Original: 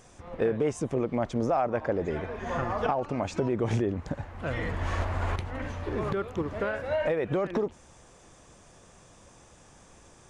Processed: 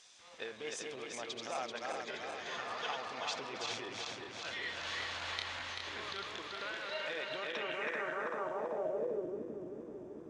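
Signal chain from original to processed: regenerating reverse delay 0.193 s, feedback 79%, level -3 dB; band-pass sweep 4000 Hz -> 320 Hz, 7.41–9.42; gain +7 dB

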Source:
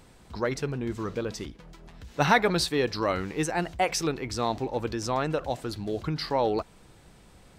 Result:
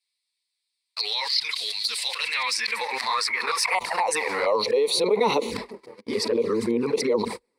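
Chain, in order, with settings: whole clip reversed; gate -43 dBFS, range -53 dB; high-pass sweep 3500 Hz -> 350 Hz, 1.91–5.31; envelope flanger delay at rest 11.3 ms, full sweep at -22.5 dBFS; ripple EQ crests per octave 0.92, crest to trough 12 dB; fast leveller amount 70%; gain -6.5 dB

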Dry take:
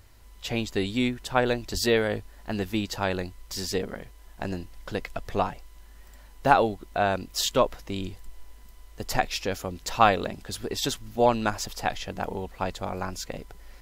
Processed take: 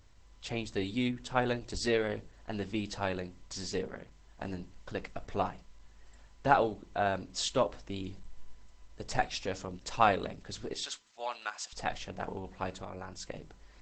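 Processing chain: 10.73–11.73 HPF 1200 Hz 12 dB/oct; 12.69–13.27 compressor 2.5:1, threshold -33 dBFS, peak gain reduction 5.5 dB; shoebox room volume 130 m³, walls furnished, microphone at 0.31 m; gain -6 dB; Opus 12 kbps 48000 Hz

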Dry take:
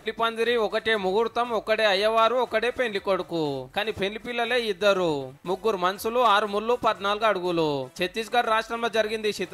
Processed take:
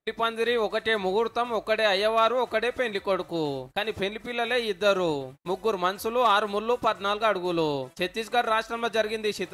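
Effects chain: gate -40 dBFS, range -38 dB; gain -1.5 dB

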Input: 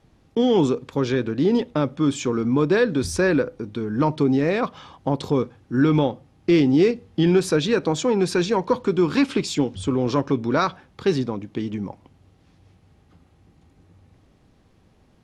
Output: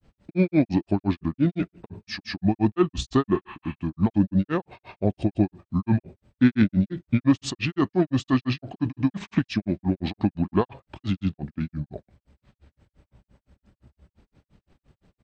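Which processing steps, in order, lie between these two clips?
pitch shift -5.5 st; spectral repair 3.43–3.71, 770–4600 Hz both; grains 0.138 s, grains 5.8/s, pitch spread up and down by 0 st; gain +1.5 dB

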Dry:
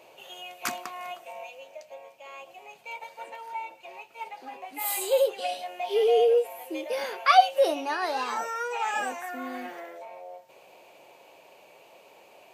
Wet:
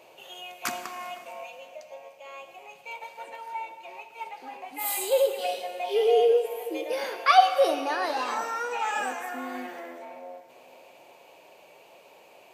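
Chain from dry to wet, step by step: on a send: reverb RT60 2.2 s, pre-delay 38 ms, DRR 9 dB

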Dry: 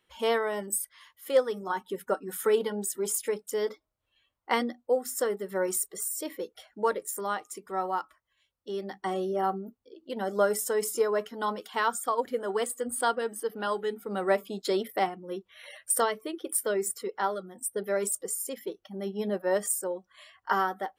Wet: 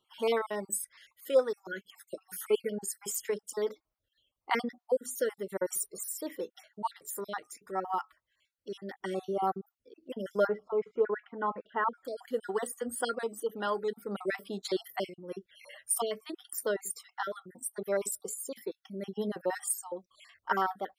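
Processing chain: random spectral dropouts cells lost 41%; 10.47–12.05 LPF 2000 Hz 24 dB/oct; gain -1.5 dB

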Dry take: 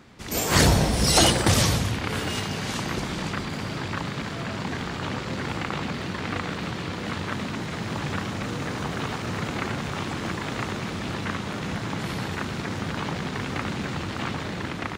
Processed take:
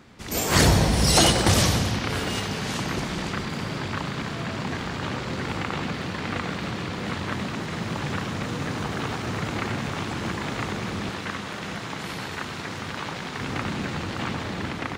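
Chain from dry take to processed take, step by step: 11.09–13.41 low shelf 460 Hz -7.5 dB; analogue delay 96 ms, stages 4096, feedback 82%, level -13 dB

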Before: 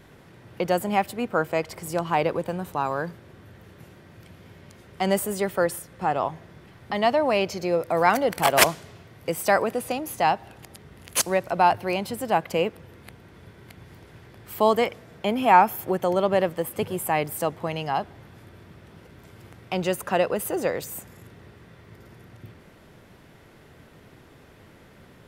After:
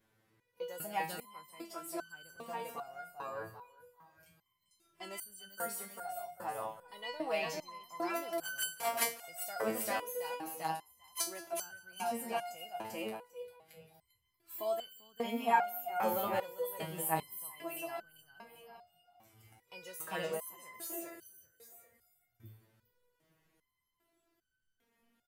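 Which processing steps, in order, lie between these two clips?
high shelf 9300 Hz +11.5 dB; feedback echo 0.395 s, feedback 31%, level -5 dB; spectral noise reduction 12 dB; low shelf 210 Hz -5 dB; echo 0.179 s -19.5 dB; stepped resonator 2.5 Hz 110–1500 Hz

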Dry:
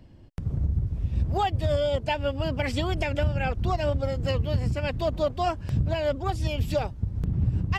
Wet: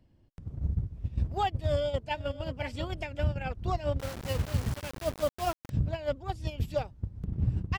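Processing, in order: 1.61–2.38 echo throw 0.54 s, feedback 10%, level -10 dB; gate -24 dBFS, range -10 dB; 3.99–5.7 requantised 6-bit, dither none; gain -3 dB

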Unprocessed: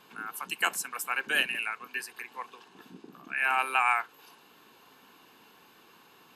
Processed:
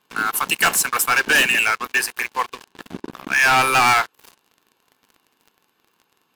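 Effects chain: sample leveller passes 5

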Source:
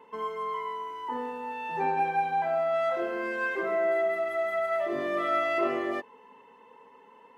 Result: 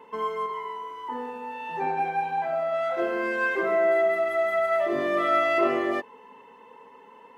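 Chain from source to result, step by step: 0.46–2.98 flange 1.5 Hz, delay 2.9 ms, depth 5.3 ms, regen -83%; gain +4.5 dB

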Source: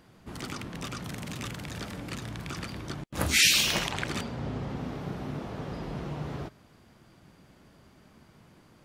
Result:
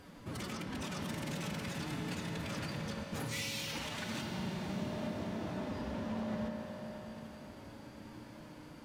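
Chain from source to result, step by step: compressor 10:1, threshold -40 dBFS, peak gain reduction 22.5 dB; formant-preserving pitch shift +7 st; hard clip -39 dBFS, distortion -18 dB; diffused feedback echo 0.591 s, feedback 54%, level -10.5 dB; reverb RT60 4.0 s, pre-delay 3 ms, DRR 2 dB; gain +3 dB

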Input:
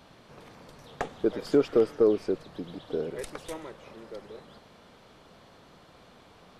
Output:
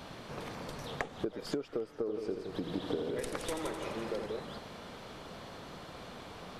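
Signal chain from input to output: compressor 16:1, threshold -40 dBFS, peak gain reduction 24 dB; 1.97–4.26 multi-head echo 85 ms, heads first and second, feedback 49%, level -8.5 dB; gain +7.5 dB

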